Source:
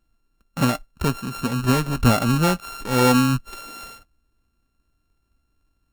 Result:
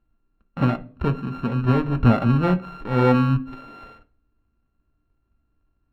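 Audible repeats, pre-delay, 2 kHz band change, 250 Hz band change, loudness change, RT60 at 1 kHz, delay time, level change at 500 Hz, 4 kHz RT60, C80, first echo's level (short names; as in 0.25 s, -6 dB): none, 3 ms, -5.0 dB, 0.0 dB, -0.5 dB, 0.40 s, none, 0.0 dB, 0.55 s, 23.0 dB, none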